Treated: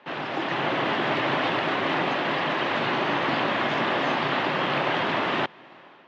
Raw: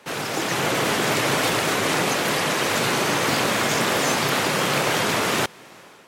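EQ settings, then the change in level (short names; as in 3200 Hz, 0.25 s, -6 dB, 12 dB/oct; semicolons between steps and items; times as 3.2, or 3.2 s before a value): speaker cabinet 170–3100 Hz, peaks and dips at 200 Hz -5 dB, 460 Hz -8 dB, 1400 Hz -4 dB, 2300 Hz -5 dB; 0.0 dB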